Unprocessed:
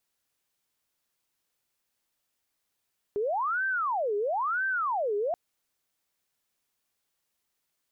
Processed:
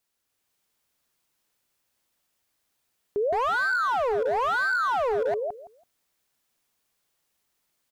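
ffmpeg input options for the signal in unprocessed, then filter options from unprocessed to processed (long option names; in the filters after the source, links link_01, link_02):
-f lavfi -i "aevalsrc='0.0531*sin(2*PI*(983.5*t-576.5/(2*PI*1)*sin(2*PI*1*t)))':duration=2.18:sample_rate=44100"
-filter_complex "[0:a]asplit=2[link_01][link_02];[link_02]adelay=165,lowpass=frequency=1200:poles=1,volume=-3.5dB,asplit=2[link_03][link_04];[link_04]adelay=165,lowpass=frequency=1200:poles=1,volume=0.2,asplit=2[link_05][link_06];[link_06]adelay=165,lowpass=frequency=1200:poles=1,volume=0.2[link_07];[link_03][link_05][link_07]amix=inputs=3:normalize=0[link_08];[link_01][link_08]amix=inputs=2:normalize=0,asoftclip=type=hard:threshold=-25.5dB,dynaudnorm=framelen=270:gausssize=3:maxgain=4dB"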